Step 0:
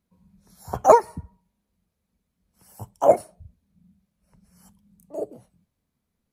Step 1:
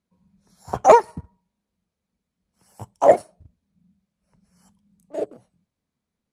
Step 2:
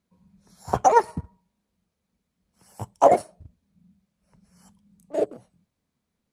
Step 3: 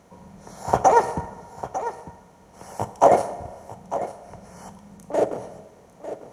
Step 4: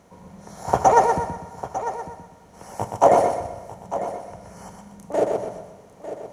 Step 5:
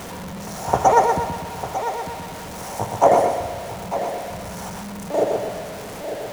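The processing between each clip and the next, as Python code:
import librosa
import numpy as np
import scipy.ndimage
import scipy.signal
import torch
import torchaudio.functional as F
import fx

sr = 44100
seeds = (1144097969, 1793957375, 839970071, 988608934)

y1 = fx.leveller(x, sr, passes=1)
y1 = scipy.signal.sosfilt(scipy.signal.butter(2, 9000.0, 'lowpass', fs=sr, output='sos'), y1)
y1 = fx.low_shelf(y1, sr, hz=82.0, db=-8.5)
y2 = fx.over_compress(y1, sr, threshold_db=-13.0, ratio=-0.5)
y3 = fx.bin_compress(y2, sr, power=0.6)
y3 = y3 + 10.0 ** (-12.5 / 20.0) * np.pad(y3, (int(899 * sr / 1000.0), 0))[:len(y3)]
y3 = fx.rev_plate(y3, sr, seeds[0], rt60_s=1.6, hf_ratio=0.85, predelay_ms=0, drr_db=13.0)
y3 = y3 * librosa.db_to_amplitude(-1.0)
y4 = fx.echo_feedback(y3, sr, ms=124, feedback_pct=35, wet_db=-5)
y5 = y4 + 0.5 * 10.0 ** (-29.0 / 20.0) * np.sign(y4)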